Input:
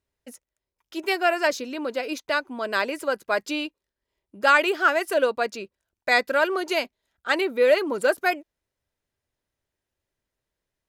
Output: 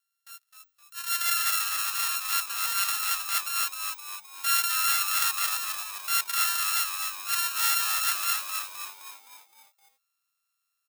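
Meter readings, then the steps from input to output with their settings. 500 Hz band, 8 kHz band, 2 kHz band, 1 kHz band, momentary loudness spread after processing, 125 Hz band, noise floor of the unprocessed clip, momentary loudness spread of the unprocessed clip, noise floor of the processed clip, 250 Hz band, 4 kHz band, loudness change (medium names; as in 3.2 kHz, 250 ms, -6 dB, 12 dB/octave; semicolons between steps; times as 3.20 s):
under -35 dB, +15.5 dB, -7.5 dB, -5.5 dB, 12 LU, no reading, under -85 dBFS, 14 LU, -80 dBFS, under -35 dB, +3.5 dB, -1.5 dB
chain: sorted samples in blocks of 32 samples; high-pass 1.4 kHz 24 dB/octave; treble shelf 7.8 kHz +11 dB; band-stop 2.3 kHz, Q 6.4; compression 4:1, threshold -22 dBFS, peak gain reduction 11 dB; transient shaper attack -10 dB, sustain +7 dB; on a send: frequency-shifting echo 259 ms, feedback 51%, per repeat -97 Hz, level -5 dB; on the sum: trim +2.5 dB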